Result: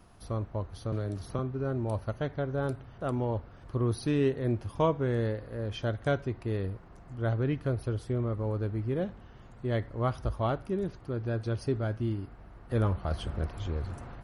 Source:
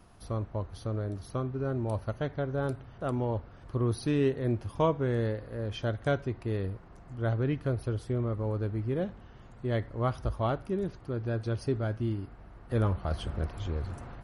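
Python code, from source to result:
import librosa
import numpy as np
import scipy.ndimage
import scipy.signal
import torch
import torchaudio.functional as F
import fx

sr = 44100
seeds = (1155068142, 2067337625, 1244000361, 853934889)

y = fx.band_squash(x, sr, depth_pct=70, at=(0.92, 1.39))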